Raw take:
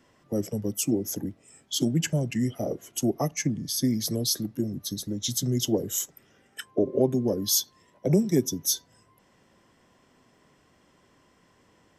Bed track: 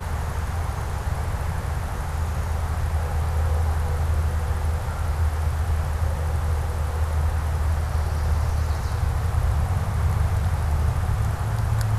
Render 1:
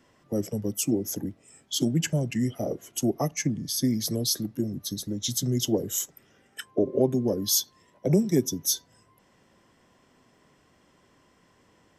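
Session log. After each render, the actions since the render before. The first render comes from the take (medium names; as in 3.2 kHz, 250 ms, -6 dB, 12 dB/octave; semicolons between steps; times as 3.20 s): no audible change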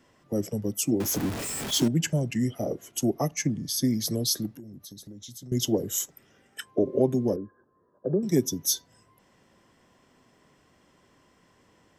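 1.00–1.88 s: jump at every zero crossing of -27.5 dBFS; 4.50–5.52 s: compression 4:1, threshold -43 dBFS; 7.36–8.23 s: rippled Chebyshev low-pass 1.7 kHz, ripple 9 dB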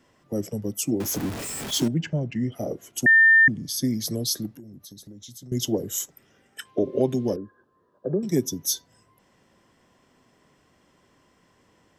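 1.94–2.52 s: distance through air 210 m; 3.06–3.48 s: bleep 1.8 kHz -11.5 dBFS; 6.65–8.26 s: peaking EQ 3.3 kHz +12 dB 1.6 oct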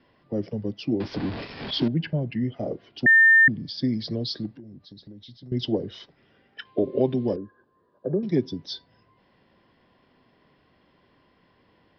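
steep low-pass 5 kHz 96 dB/octave; band-stop 1.3 kHz, Q 15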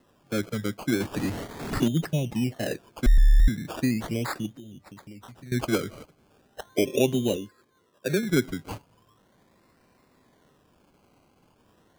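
decimation with a swept rate 19×, swing 60% 0.38 Hz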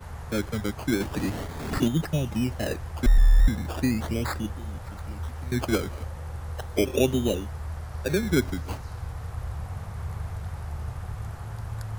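add bed track -11.5 dB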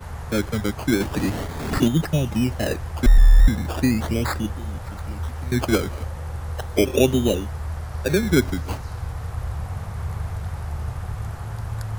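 trim +5 dB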